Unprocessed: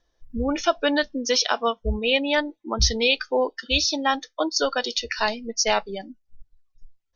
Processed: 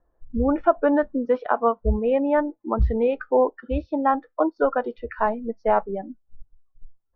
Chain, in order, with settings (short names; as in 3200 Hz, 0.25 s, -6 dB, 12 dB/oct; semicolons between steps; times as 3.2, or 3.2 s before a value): LPF 1300 Hz 24 dB/oct; gain +3.5 dB